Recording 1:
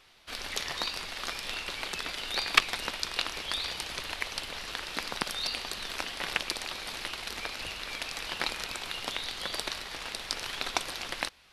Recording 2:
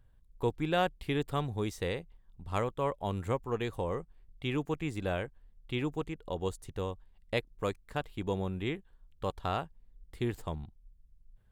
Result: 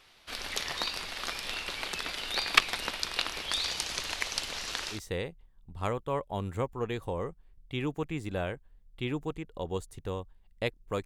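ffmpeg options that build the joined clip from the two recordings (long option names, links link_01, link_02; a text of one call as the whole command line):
ffmpeg -i cue0.wav -i cue1.wav -filter_complex "[0:a]asettb=1/sr,asplit=3[link_01][link_02][link_03];[link_01]atrim=end=3.524[link_04];[link_02]atrim=start=3.52:end=5,asetpts=PTS-STARTPTS,afade=type=in:duration=0.004:curve=qsin,afade=type=out:start_time=1.476:duration=0.004:curve=qsin,equalizer=frequency=6500:width=1.4:gain=8[link_05];[link_03]atrim=start=4.996[link_06];[link_04][link_05]acrossfade=duration=0.004:curve1=hsin:curve2=qsin[link_07];[link_07][link_06]acrossfade=duration=0.004:curve1=qsin:curve2=hsin,apad=whole_dur=11.05,atrim=end=11.05,atrim=end=5,asetpts=PTS-STARTPTS[link_08];[1:a]atrim=start=1.61:end=7.76,asetpts=PTS-STARTPTS[link_09];[link_08][link_09]acrossfade=duration=0.1:curve1=tri:curve2=tri" out.wav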